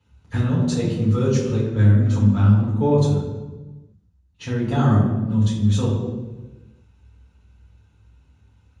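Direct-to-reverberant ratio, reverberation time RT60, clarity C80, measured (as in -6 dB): -8.0 dB, 1.2 s, 5.0 dB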